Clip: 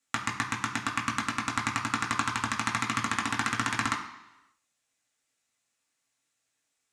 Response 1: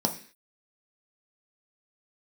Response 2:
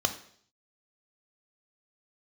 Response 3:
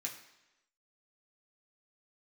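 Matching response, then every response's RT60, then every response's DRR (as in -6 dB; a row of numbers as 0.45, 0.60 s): 3; 0.45, 0.60, 0.95 s; 3.0, 7.0, -2.0 dB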